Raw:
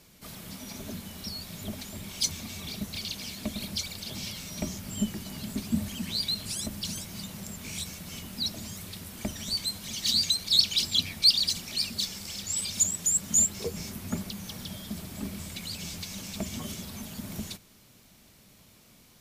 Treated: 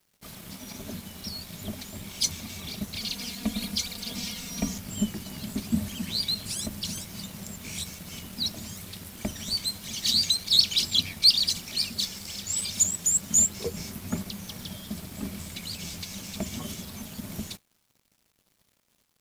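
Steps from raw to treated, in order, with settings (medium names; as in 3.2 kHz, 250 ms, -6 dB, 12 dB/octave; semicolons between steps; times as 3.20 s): 3.00–4.78 s: comb 4.2 ms, depth 71%; crossover distortion -53 dBFS; trim +2 dB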